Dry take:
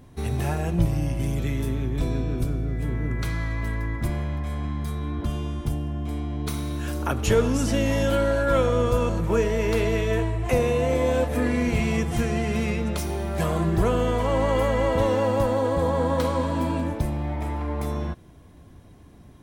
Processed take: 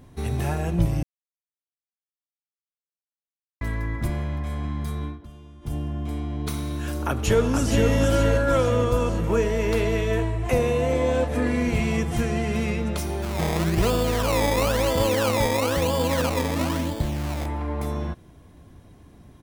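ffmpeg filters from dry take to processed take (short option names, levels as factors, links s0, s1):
-filter_complex "[0:a]asplit=2[s0][s1];[s1]afade=t=in:st=7.06:d=0.01,afade=t=out:st=7.9:d=0.01,aecho=0:1:470|940|1410|1880|2350|2820:0.595662|0.297831|0.148916|0.0744578|0.0372289|0.0186144[s2];[s0][s2]amix=inputs=2:normalize=0,asettb=1/sr,asplit=3[s3][s4][s5];[s3]atrim=end=10.934[s6];[s4]atrim=start=10.93:end=11.47,asetpts=PTS-STARTPTS,afade=t=in:d=0.004:c=qsin,afade=t=out:st=0.536:d=0.004:c=qsin,lowpass=9500[s7];[s5]atrim=start=11.466[s8];[s6][s7]acrossfade=d=0.004:c1=hsin:c2=qsin[s9];[s9][s8]acrossfade=d=0.004:c1=qsin:c2=hsin,asettb=1/sr,asplit=3[s10][s11][s12];[s10]atrim=end=13.224[s13];[s11]atrim=start=13.22:end=17.46,asetpts=PTS-STARTPTS,afade=t=in:d=0.004:c=qsin,afade=t=out:st=4.236:d=0.004:c=qsin,acrusher=samples=21:mix=1:aa=0.000001:lfo=1:lforange=21:lforate=1[s14];[s12]atrim=start=17.456[s15];[s13][s14]acrossfade=d=0.004:c1=hsin:c2=qsin[s16];[s16][s15]acrossfade=d=0.004:c1=qsin:c2=hsin,asplit=5[s17][s18][s19][s20][s21];[s17]atrim=end=1.03,asetpts=PTS-STARTPTS,afade=t=out:st=1.026:d=0.004:c=hsin[s22];[s18]atrim=start=1.03:end=3.61,asetpts=PTS-STARTPTS,volume=0[s23];[s19]atrim=start=3.61:end=5.19,asetpts=PTS-STARTPTS,afade=t=in:d=0.004:c=hsin,afade=t=out:st=1.43:d=0.15:silence=0.158489[s24];[s20]atrim=start=5.19:end=5.61,asetpts=PTS-STARTPTS,volume=0.158[s25];[s21]atrim=start=5.61,asetpts=PTS-STARTPTS,afade=t=in:d=0.15:silence=0.158489[s26];[s22][s23][s24][s25][s26]concat=n=5:v=0:a=1"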